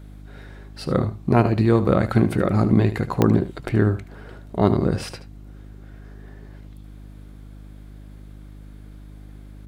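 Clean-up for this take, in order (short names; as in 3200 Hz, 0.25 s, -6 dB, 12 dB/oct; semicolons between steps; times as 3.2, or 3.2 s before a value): de-click; de-hum 51 Hz, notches 6; inverse comb 75 ms -13 dB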